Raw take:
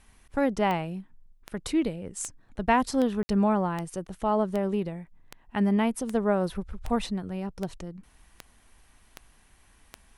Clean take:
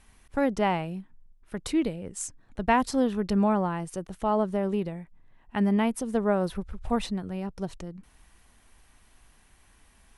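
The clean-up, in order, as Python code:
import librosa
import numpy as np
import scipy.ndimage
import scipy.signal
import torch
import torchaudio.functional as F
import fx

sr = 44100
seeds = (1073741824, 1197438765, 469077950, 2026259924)

y = fx.fix_declick_ar(x, sr, threshold=10.0)
y = fx.fix_ambience(y, sr, seeds[0], print_start_s=9.31, print_end_s=9.81, start_s=3.23, end_s=3.29)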